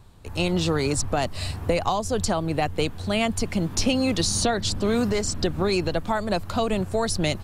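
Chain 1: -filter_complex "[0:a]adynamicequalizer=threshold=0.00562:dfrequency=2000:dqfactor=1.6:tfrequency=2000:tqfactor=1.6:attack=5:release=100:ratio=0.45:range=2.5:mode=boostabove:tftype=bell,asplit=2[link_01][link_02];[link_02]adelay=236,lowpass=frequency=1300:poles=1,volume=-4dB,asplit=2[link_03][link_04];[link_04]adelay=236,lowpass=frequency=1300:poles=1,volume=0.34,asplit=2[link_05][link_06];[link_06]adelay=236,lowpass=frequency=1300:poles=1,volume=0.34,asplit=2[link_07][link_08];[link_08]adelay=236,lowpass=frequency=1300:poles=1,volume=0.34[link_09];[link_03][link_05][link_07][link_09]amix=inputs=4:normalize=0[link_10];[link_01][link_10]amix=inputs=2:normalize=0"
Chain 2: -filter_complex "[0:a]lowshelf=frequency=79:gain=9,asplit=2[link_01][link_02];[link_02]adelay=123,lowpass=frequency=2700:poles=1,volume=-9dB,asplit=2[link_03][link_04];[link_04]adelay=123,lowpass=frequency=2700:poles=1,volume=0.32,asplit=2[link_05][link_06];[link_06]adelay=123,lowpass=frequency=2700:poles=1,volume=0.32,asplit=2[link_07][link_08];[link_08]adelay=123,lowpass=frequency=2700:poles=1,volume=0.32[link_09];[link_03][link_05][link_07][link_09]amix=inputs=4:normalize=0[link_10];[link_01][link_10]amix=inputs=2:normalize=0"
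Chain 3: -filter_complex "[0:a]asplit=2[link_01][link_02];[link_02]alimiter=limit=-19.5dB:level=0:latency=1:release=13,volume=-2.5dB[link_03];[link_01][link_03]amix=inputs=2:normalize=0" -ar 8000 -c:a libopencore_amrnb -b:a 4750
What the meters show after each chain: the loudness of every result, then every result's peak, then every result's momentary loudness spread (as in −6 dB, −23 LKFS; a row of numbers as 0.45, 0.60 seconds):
−23.0, −23.5, −23.5 LKFS; −7.5, −6.5, −8.5 dBFS; 3, 4, 5 LU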